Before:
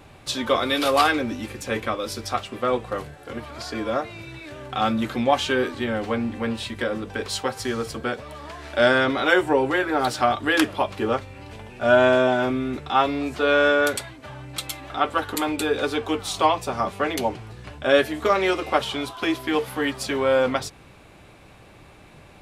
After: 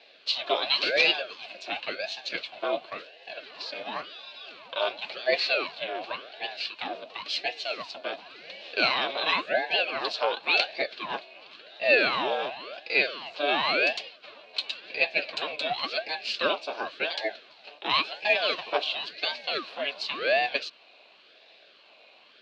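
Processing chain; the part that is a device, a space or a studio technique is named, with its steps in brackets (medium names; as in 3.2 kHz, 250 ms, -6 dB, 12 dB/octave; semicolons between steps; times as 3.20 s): steep high-pass 360 Hz 36 dB/octave; voice changer toy (ring modulator with a swept carrier 700 Hz, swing 80%, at 0.93 Hz; cabinet simulation 520–4500 Hz, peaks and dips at 620 Hz +5 dB, 890 Hz -7 dB, 1.3 kHz -8 dB, 1.9 kHz -10 dB, 2.6 kHz +7 dB, 4.2 kHz +10 dB)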